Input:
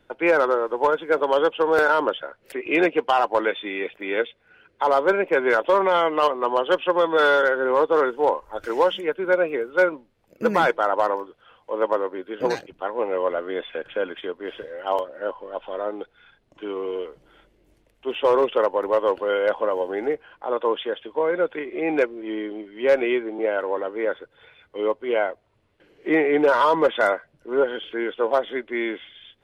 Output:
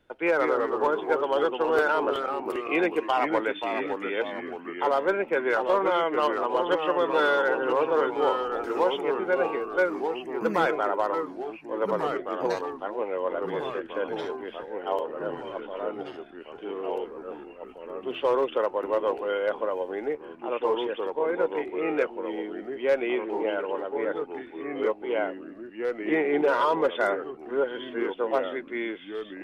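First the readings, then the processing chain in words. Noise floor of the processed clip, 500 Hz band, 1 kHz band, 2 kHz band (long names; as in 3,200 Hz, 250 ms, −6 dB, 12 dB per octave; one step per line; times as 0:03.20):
−45 dBFS, −4.5 dB, −4.0 dB, −5.0 dB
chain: delay with pitch and tempo change per echo 154 ms, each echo −2 semitones, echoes 3, each echo −6 dB
level −5.5 dB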